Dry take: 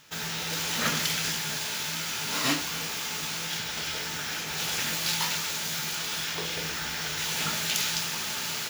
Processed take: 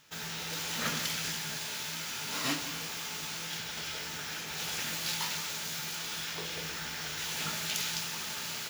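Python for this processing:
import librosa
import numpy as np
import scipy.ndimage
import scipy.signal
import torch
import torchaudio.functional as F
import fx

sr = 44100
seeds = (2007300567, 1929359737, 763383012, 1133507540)

y = x + 10.0 ** (-13.0 / 20.0) * np.pad(x, (int(174 * sr / 1000.0), 0))[:len(x)]
y = F.gain(torch.from_numpy(y), -6.0).numpy()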